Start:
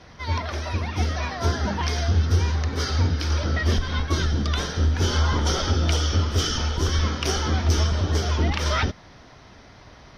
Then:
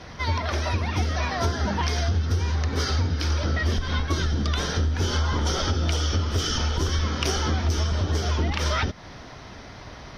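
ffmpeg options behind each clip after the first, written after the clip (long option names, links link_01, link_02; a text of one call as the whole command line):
ffmpeg -i in.wav -af "acompressor=threshold=-28dB:ratio=4,volume=6dB" out.wav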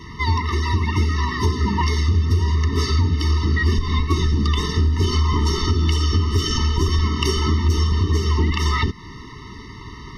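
ffmpeg -i in.wav -af "afftfilt=real='re*eq(mod(floor(b*sr/1024/440),2),0)':imag='im*eq(mod(floor(b*sr/1024/440),2),0)':win_size=1024:overlap=0.75,volume=6dB" out.wav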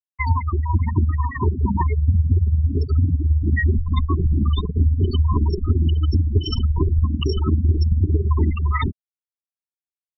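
ffmpeg -i in.wav -af "afftfilt=real='re*gte(hypot(re,im),0.282)':imag='im*gte(hypot(re,im),0.282)':win_size=1024:overlap=0.75,bandreject=frequency=640:width=12,tremolo=f=18:d=0.51,volume=3dB" out.wav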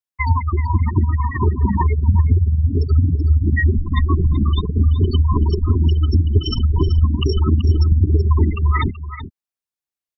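ffmpeg -i in.wav -af "aecho=1:1:379:0.251,volume=2.5dB" out.wav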